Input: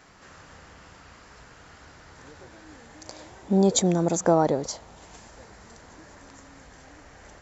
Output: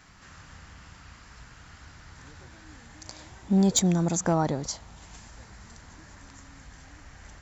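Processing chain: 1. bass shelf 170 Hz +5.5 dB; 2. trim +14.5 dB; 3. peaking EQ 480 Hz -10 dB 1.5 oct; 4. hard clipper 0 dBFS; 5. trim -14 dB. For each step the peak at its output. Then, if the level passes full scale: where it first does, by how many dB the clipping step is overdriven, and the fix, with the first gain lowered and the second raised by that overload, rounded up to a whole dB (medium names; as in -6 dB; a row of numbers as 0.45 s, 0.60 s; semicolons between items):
-7.5 dBFS, +7.0 dBFS, +5.5 dBFS, 0.0 dBFS, -14.0 dBFS; step 2, 5.5 dB; step 2 +8.5 dB, step 5 -8 dB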